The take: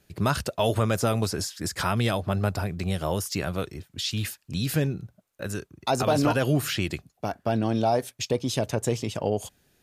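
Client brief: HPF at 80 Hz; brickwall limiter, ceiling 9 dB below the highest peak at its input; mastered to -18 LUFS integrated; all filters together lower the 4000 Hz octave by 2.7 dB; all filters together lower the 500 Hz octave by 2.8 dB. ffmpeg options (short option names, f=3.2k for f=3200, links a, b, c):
-af "highpass=80,equalizer=f=500:t=o:g=-3.5,equalizer=f=4k:t=o:g=-3.5,volume=14dB,alimiter=limit=-6dB:level=0:latency=1"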